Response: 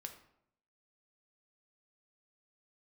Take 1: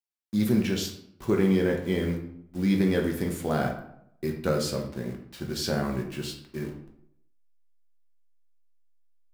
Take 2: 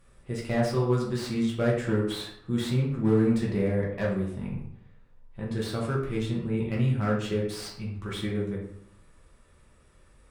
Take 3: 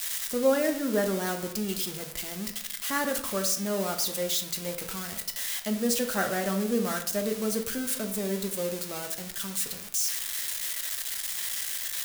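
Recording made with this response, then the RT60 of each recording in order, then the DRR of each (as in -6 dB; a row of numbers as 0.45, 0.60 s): 3; 0.75, 0.75, 0.75 s; 0.5, -4.5, 4.5 dB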